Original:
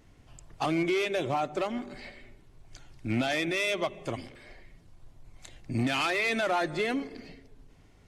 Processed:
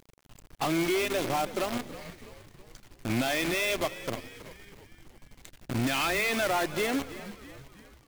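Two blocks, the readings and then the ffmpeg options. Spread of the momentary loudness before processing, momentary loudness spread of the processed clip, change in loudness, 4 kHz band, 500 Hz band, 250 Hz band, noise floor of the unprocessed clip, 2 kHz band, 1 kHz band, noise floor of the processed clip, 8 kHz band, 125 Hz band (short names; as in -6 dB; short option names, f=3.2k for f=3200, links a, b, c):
16 LU, 20 LU, +0.5 dB, +1.5 dB, 0.0 dB, 0.0 dB, -58 dBFS, +0.5 dB, 0.0 dB, -62 dBFS, +7.5 dB, -0.5 dB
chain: -filter_complex "[0:a]acrusher=bits=6:dc=4:mix=0:aa=0.000001,asplit=6[a][b][c][d][e][f];[b]adelay=324,afreqshift=-70,volume=-15dB[g];[c]adelay=648,afreqshift=-140,volume=-20.7dB[h];[d]adelay=972,afreqshift=-210,volume=-26.4dB[i];[e]adelay=1296,afreqshift=-280,volume=-32dB[j];[f]adelay=1620,afreqshift=-350,volume=-37.7dB[k];[a][g][h][i][j][k]amix=inputs=6:normalize=0"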